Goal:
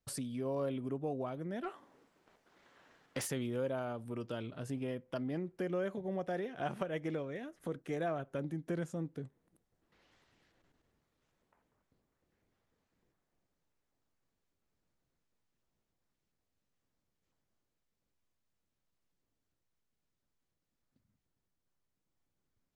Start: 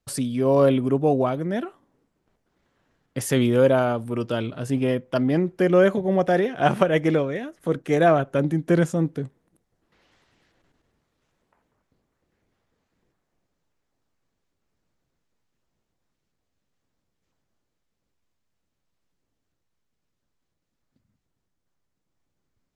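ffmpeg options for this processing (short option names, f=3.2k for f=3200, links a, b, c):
-filter_complex "[0:a]acompressor=threshold=-36dB:ratio=2,asplit=3[a][b][c];[a]afade=t=out:st=1.63:d=0.02[d];[b]asplit=2[e][f];[f]highpass=f=720:p=1,volume=21dB,asoftclip=type=tanh:threshold=-19.5dB[g];[e][g]amix=inputs=2:normalize=0,lowpass=f=5k:p=1,volume=-6dB,afade=t=in:st=1.63:d=0.02,afade=t=out:st=3.26:d=0.02[h];[c]afade=t=in:st=3.26:d=0.02[i];[d][h][i]amix=inputs=3:normalize=0,volume=-7dB"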